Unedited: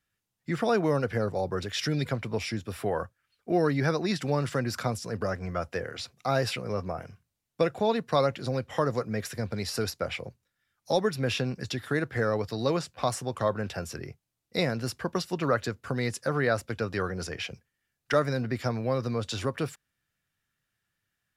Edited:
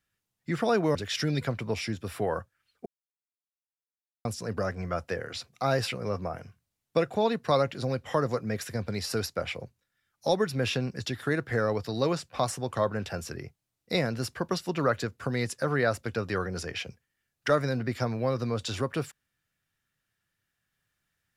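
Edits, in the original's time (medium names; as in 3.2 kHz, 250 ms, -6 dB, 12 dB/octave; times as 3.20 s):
0.95–1.59 s: delete
3.50–4.89 s: mute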